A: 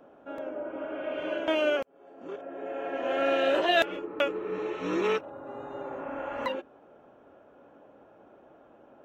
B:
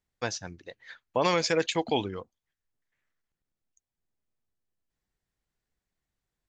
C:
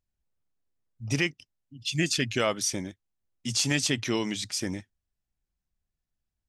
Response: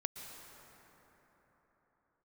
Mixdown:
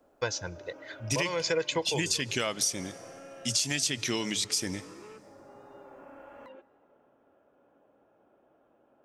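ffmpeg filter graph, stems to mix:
-filter_complex "[0:a]alimiter=limit=-23.5dB:level=0:latency=1,acrossover=split=720|2300[a][b][c];[a]acompressor=threshold=-39dB:ratio=4[d];[b]acompressor=threshold=-43dB:ratio=4[e];[c]acompressor=threshold=-60dB:ratio=4[f];[d][e][f]amix=inputs=3:normalize=0,volume=-12dB,asplit=2[g][h];[h]volume=-12.5dB[i];[1:a]aecho=1:1:2:0.65,volume=1dB,asplit=2[j][k];[k]volume=-21dB[l];[2:a]highshelf=f=2.6k:g=10,volume=-3dB,asplit=3[m][n][o];[n]volume=-15.5dB[p];[o]apad=whole_len=286026[q];[j][q]sidechaincompress=threshold=-29dB:ratio=8:attack=12:release=425[r];[3:a]atrim=start_sample=2205[s];[i][l][p]amix=inputs=3:normalize=0[t];[t][s]afir=irnorm=-1:irlink=0[u];[g][r][m][u]amix=inputs=4:normalize=0,acompressor=threshold=-25dB:ratio=6"

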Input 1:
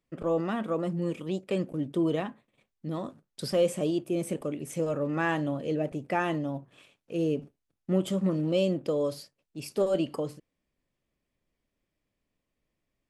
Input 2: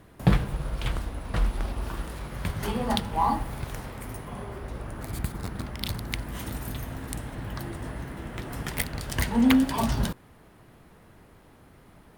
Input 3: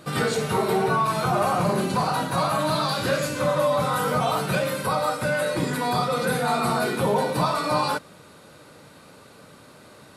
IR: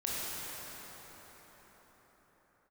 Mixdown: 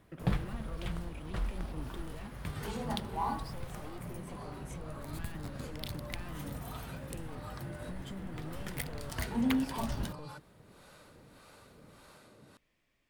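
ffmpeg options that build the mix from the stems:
-filter_complex "[0:a]equalizer=f=2.3k:w=0.52:g=8.5,aeval=exprs='clip(val(0),-1,0.0335)':c=same,volume=2dB[a];[1:a]volume=-10dB[b];[2:a]acrossover=split=510[c][d];[c]aeval=exprs='val(0)*(1-0.7/2+0.7/2*cos(2*PI*1.7*n/s))':c=same[e];[d]aeval=exprs='val(0)*(1-0.7/2-0.7/2*cos(2*PI*1.7*n/s))':c=same[f];[e][f]amix=inputs=2:normalize=0,adelay=2400,volume=-6dB[g];[a][g]amix=inputs=2:normalize=0,acrossover=split=160[h][i];[i]acompressor=threshold=-53dB:ratio=2[j];[h][j]amix=inputs=2:normalize=0,alimiter=level_in=12dB:limit=-24dB:level=0:latency=1:release=245,volume=-12dB,volume=0dB[k];[b][k]amix=inputs=2:normalize=0"

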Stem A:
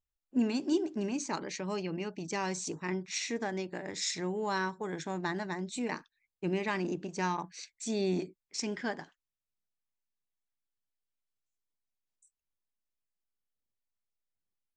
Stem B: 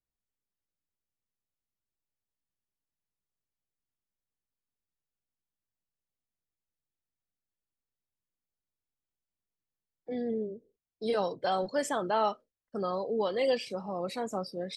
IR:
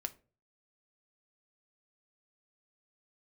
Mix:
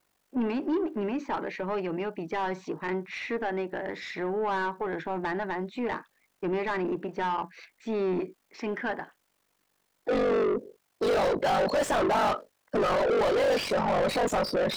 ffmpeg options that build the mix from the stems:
-filter_complex "[0:a]lowpass=2.5k,volume=-17.5dB[a];[1:a]equalizer=f=3.9k:w=0.46:g=-5,crystalizer=i=3.5:c=0,aeval=exprs='val(0)*sin(2*PI*24*n/s)':c=same,volume=0.5dB[b];[a][b]amix=inputs=2:normalize=0,highshelf=f=6.9k:g=-9,asplit=2[c][d];[d]highpass=f=720:p=1,volume=38dB,asoftclip=type=tanh:threshold=-17dB[e];[c][e]amix=inputs=2:normalize=0,lowpass=f=1.5k:p=1,volume=-6dB"

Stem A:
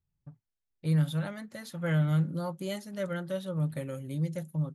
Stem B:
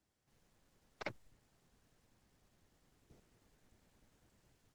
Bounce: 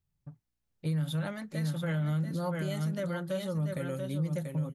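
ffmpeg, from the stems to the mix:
-filter_complex "[0:a]volume=1.5dB,asplit=2[a][b];[b]volume=-7dB[c];[1:a]aeval=exprs='val(0)+0.000251*(sin(2*PI*60*n/s)+sin(2*PI*2*60*n/s)/2+sin(2*PI*3*60*n/s)/3+sin(2*PI*4*60*n/s)/4+sin(2*PI*5*60*n/s)/5)':c=same,adelay=350,volume=-17dB[d];[c]aecho=0:1:686:1[e];[a][d][e]amix=inputs=3:normalize=0,alimiter=level_in=0.5dB:limit=-24dB:level=0:latency=1:release=86,volume=-0.5dB"

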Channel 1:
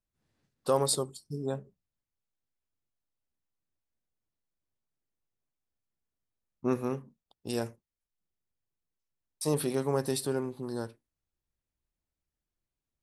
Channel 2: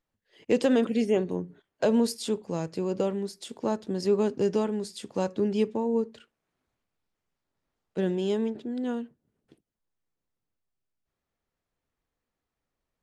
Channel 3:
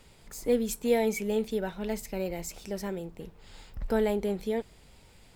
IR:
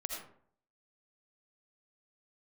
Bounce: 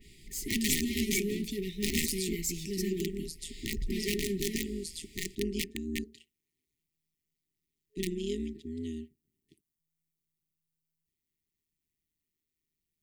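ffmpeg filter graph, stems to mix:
-filter_complex "[1:a]aemphasis=mode=production:type=50kf,aeval=exprs='(mod(7.5*val(0)+1,2)-1)/7.5':c=same,tremolo=f=160:d=0.857,volume=-2.5dB[a];[2:a]equalizer=f=99:w=2.8:g=-8.5,asoftclip=type=hard:threshold=-30.5dB,adynamicequalizer=threshold=0.00316:dfrequency=2900:dqfactor=0.7:tfrequency=2900:tqfactor=0.7:attack=5:release=100:ratio=0.375:range=2:mode=boostabove:tftype=highshelf,volume=2.5dB[b];[a][b]amix=inputs=2:normalize=0,afftfilt=real='re*(1-between(b*sr/4096,420,1800))':imag='im*(1-between(b*sr/4096,420,1800))':win_size=4096:overlap=0.75"

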